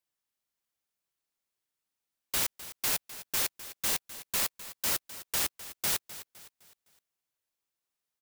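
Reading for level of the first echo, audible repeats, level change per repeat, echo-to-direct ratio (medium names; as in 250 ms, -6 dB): -15.0 dB, 3, -7.5 dB, -14.0 dB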